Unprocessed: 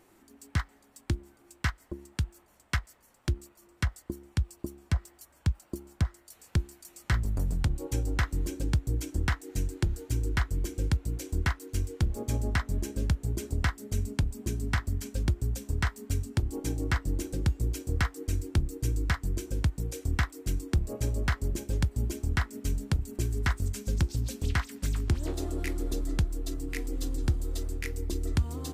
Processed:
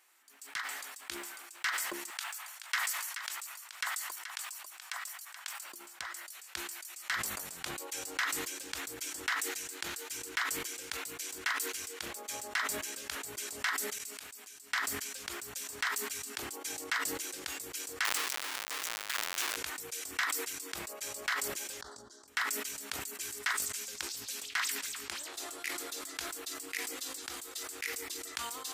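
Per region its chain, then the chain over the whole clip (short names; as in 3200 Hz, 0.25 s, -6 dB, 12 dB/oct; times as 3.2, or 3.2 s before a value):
2.1–5.64 HPF 710 Hz 24 dB/oct + echo 0.428 s -9.5 dB
13.98–14.72 tilt shelf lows -5 dB, about 770 Hz + compressor 8:1, threshold -44 dBFS
18.05–19.56 upward compressor, threshold -33 dBFS + Schmitt trigger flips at -45.5 dBFS
21.81–22.28 Chebyshev band-stop 1400–4300 Hz + air absorption 120 m + compressor 4:1, threshold -35 dBFS
whole clip: HPF 1500 Hz 12 dB/oct; sustainer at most 33 dB/s; gain +1 dB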